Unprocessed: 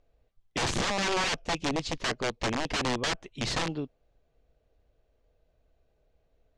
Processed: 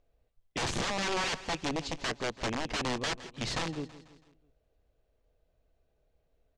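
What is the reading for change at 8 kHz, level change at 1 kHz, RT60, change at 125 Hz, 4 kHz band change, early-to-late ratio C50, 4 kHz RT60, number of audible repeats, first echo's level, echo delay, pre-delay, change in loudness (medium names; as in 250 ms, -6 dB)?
-3.5 dB, -3.5 dB, no reverb, -3.5 dB, -3.5 dB, no reverb, no reverb, 3, -16.0 dB, 164 ms, no reverb, -3.5 dB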